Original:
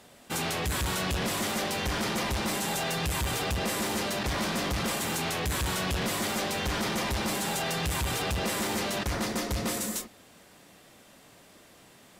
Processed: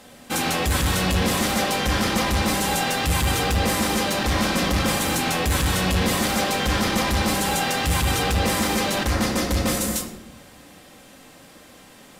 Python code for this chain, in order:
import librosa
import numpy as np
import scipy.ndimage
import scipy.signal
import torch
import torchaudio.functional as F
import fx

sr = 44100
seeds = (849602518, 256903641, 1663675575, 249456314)

y = fx.room_shoebox(x, sr, seeds[0], volume_m3=3700.0, walls='furnished', distance_m=2.1)
y = y * librosa.db_to_amplitude(6.0)